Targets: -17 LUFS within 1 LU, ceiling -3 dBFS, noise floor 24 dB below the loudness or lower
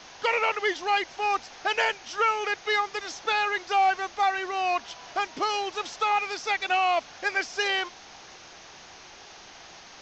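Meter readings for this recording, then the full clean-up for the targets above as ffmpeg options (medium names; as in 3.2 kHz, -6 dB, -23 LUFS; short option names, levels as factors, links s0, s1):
noise floor -48 dBFS; noise floor target -51 dBFS; loudness -26.5 LUFS; peak level -13.5 dBFS; loudness target -17.0 LUFS
-> -af "afftdn=nr=6:nf=-48"
-af "volume=2.99"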